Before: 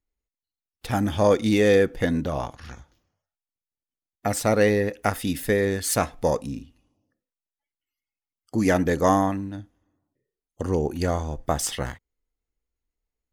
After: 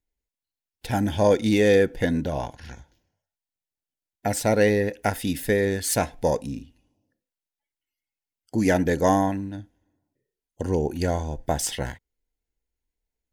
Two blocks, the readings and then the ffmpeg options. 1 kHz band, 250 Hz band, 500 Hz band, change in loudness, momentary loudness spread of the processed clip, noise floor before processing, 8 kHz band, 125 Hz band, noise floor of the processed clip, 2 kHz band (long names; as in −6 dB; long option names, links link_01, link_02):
−1.0 dB, 0.0 dB, 0.0 dB, 0.0 dB, 14 LU, below −85 dBFS, 0.0 dB, 0.0 dB, below −85 dBFS, 0.0 dB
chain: -af "asuperstop=centerf=1200:order=4:qfactor=3.9"